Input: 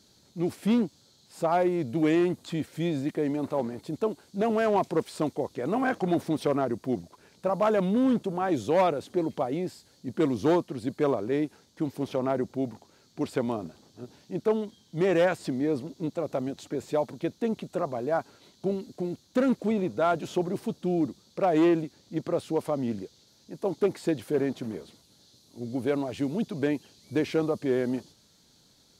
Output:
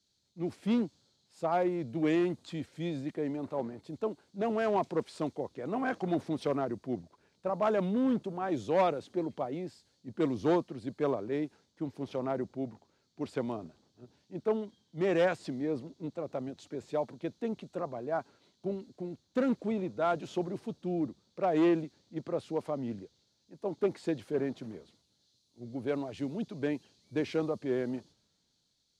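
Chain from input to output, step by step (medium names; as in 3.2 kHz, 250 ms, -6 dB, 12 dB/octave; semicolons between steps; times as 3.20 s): Bessel low-pass 6.5 kHz, order 2; three bands expanded up and down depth 40%; trim -5.5 dB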